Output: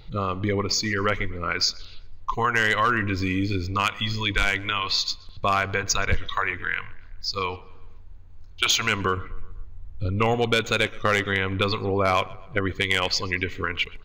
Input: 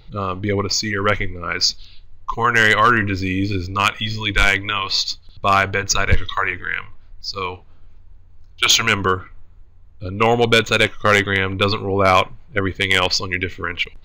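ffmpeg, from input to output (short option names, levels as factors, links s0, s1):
-filter_complex "[0:a]asettb=1/sr,asplit=3[s0][s1][s2];[s0]atrim=end=9.174[s3];[s1]atrim=start=9.17:end=10.34,asetpts=PTS-STARTPTS,afade=t=in:d=0.004:c=qsin,afade=t=out:st=1.166:d=0.004:c=qsin,lowshelf=f=130:g=9[s4];[s2]atrim=start=10.336[s5];[s3][s4]acrossfade=d=0.004:c1=hsin:c2=qsin[s6];[s6][s5]acrossfade=d=0.004:c1=qsin:c2=hsin,acompressor=threshold=0.0631:ratio=2,asplit=2[s7][s8];[s8]adelay=125,lowpass=f=3300:p=1,volume=0.0891,asplit=2[s9][s10];[s10]adelay=125,lowpass=f=3300:p=1,volume=0.53,asplit=2[s11][s12];[s12]adelay=125,lowpass=f=3300:p=1,volume=0.53,asplit=2[s13][s14];[s14]adelay=125,lowpass=f=3300:p=1,volume=0.53[s15];[s7][s9][s11][s13][s15]amix=inputs=5:normalize=0"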